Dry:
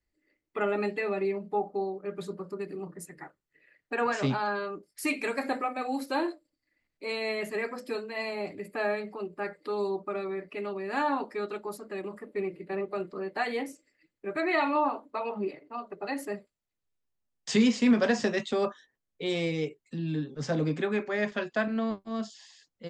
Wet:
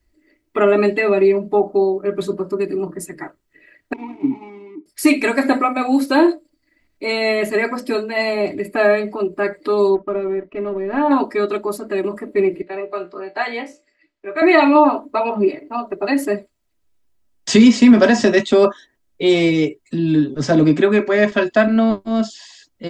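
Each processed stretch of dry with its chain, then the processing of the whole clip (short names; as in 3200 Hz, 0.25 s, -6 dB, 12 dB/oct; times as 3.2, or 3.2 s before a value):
3.93–4.86 median filter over 41 samples + vowel filter u
9.95–11.11 G.711 law mismatch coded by A + tape spacing loss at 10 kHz 41 dB
12.62–14.42 three-band isolator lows -12 dB, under 440 Hz, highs -23 dB, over 6600 Hz + resonator 59 Hz, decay 0.18 s, mix 80%
whole clip: low shelf 440 Hz +5.5 dB; comb 3.1 ms, depth 48%; maximiser +12.5 dB; gain -1 dB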